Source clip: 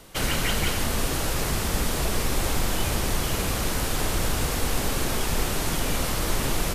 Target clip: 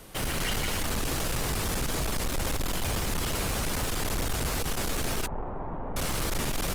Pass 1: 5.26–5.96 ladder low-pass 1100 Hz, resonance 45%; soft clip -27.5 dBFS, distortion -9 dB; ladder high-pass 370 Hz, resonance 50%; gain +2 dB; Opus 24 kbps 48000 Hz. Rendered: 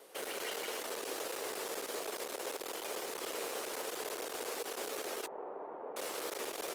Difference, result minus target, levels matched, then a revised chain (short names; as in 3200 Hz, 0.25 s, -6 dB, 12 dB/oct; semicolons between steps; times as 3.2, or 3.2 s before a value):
500 Hz band +5.5 dB
5.26–5.96 ladder low-pass 1100 Hz, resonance 45%; soft clip -27.5 dBFS, distortion -9 dB; gain +2 dB; Opus 24 kbps 48000 Hz